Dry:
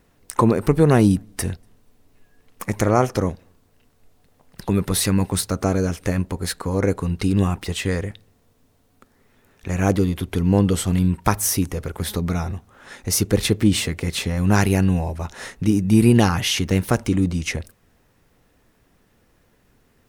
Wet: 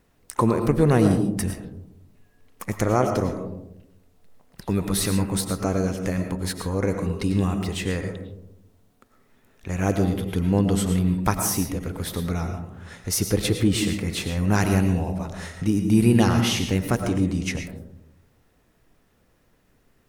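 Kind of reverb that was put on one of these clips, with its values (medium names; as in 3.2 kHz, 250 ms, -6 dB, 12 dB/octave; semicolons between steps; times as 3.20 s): algorithmic reverb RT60 0.82 s, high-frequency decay 0.25×, pre-delay 70 ms, DRR 6 dB; trim -4 dB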